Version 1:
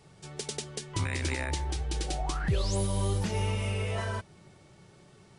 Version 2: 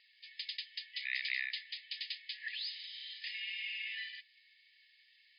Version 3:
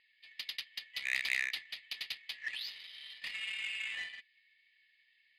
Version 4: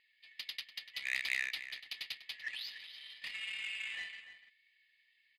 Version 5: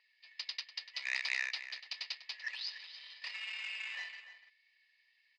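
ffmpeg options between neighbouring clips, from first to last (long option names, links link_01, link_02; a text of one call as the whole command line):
ffmpeg -i in.wav -af "afftfilt=real='re*between(b*sr/4096,1700,5100)':imag='im*between(b*sr/4096,1700,5100)':win_size=4096:overlap=0.75,volume=1dB" out.wav
ffmpeg -i in.wav -af "adynamicsmooth=sensitivity=7.5:basefreq=2100,volume=4dB" out.wav
ffmpeg -i in.wav -filter_complex "[0:a]asplit=2[link_01][link_02];[link_02]adelay=291.5,volume=-11dB,highshelf=frequency=4000:gain=-6.56[link_03];[link_01][link_03]amix=inputs=2:normalize=0,volume=-2dB" out.wav
ffmpeg -i in.wav -af "highpass=frequency=460:width=0.5412,highpass=frequency=460:width=1.3066,equalizer=frequency=970:width_type=q:width=4:gain=6,equalizer=frequency=2100:width_type=q:width=4:gain=-4,equalizer=frequency=3300:width_type=q:width=4:gain=-8,equalizer=frequency=5300:width_type=q:width=4:gain=8,lowpass=frequency=6300:width=0.5412,lowpass=frequency=6300:width=1.3066,volume=2.5dB" out.wav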